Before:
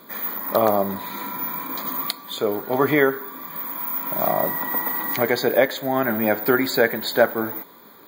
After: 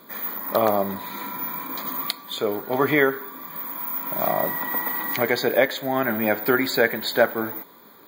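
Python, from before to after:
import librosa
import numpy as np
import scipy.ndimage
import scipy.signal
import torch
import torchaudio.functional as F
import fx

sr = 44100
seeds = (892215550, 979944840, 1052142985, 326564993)

y = fx.dynamic_eq(x, sr, hz=2600.0, q=1.0, threshold_db=-37.0, ratio=4.0, max_db=4)
y = F.gain(torch.from_numpy(y), -2.0).numpy()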